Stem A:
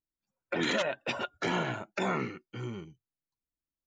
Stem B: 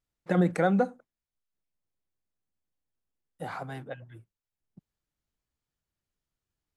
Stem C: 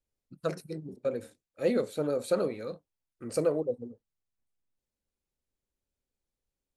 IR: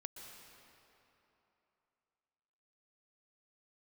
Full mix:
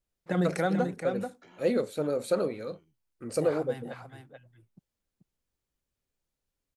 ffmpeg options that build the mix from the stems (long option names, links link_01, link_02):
-filter_complex "[0:a]acompressor=threshold=-41dB:ratio=2,volume=-18.5dB[link_01];[1:a]adynamicequalizer=threshold=0.00708:dfrequency=2100:dqfactor=0.7:tfrequency=2100:tqfactor=0.7:attack=5:release=100:ratio=0.375:range=3:mode=boostabove:tftype=highshelf,volume=-3.5dB,asplit=2[link_02][link_03];[link_03]volume=-7.5dB[link_04];[2:a]volume=0.5dB[link_05];[link_04]aecho=0:1:434:1[link_06];[link_01][link_02][link_05][link_06]amix=inputs=4:normalize=0"